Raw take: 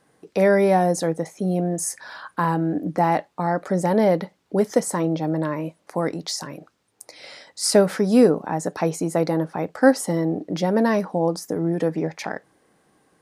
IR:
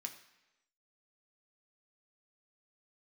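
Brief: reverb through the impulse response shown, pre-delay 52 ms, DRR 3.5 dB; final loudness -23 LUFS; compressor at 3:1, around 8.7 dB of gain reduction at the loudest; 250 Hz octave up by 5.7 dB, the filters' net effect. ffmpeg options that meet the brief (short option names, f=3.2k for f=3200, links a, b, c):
-filter_complex "[0:a]equalizer=f=250:t=o:g=7.5,acompressor=threshold=-16dB:ratio=3,asplit=2[a][b];[1:a]atrim=start_sample=2205,adelay=52[c];[b][c]afir=irnorm=-1:irlink=0,volume=-0.5dB[d];[a][d]amix=inputs=2:normalize=0,volume=-1.5dB"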